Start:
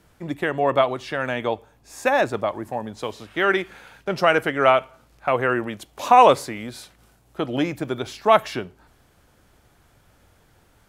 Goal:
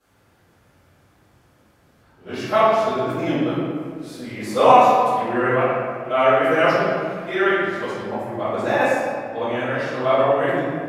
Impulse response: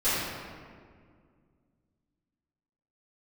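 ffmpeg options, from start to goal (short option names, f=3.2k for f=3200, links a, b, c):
-filter_complex "[0:a]areverse,highpass=85[a];[1:a]atrim=start_sample=2205[b];[a][b]afir=irnorm=-1:irlink=0,volume=-12dB"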